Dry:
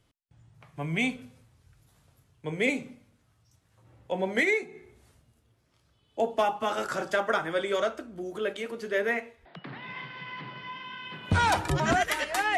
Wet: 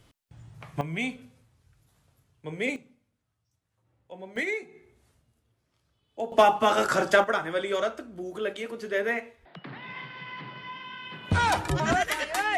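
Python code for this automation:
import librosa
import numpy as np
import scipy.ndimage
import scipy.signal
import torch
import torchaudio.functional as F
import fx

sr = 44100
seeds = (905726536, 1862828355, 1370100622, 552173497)

y = fx.gain(x, sr, db=fx.steps((0.0, 9.0), (0.81, -3.0), (2.76, -13.0), (4.36, -5.0), (6.32, 7.0), (7.24, 0.0)))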